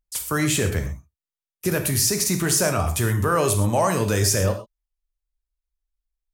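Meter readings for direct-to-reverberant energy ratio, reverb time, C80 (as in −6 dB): 5.5 dB, non-exponential decay, 12.5 dB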